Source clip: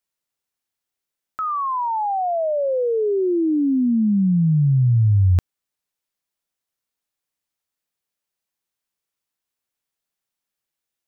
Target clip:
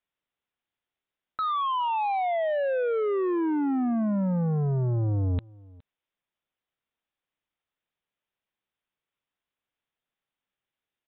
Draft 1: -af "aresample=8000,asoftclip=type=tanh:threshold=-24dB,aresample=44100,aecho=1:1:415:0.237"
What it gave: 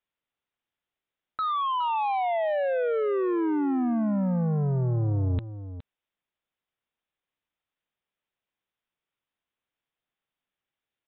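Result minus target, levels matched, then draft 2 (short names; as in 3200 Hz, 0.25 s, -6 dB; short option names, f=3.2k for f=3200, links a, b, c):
echo-to-direct +11.5 dB
-af "aresample=8000,asoftclip=type=tanh:threshold=-24dB,aresample=44100,aecho=1:1:415:0.0631"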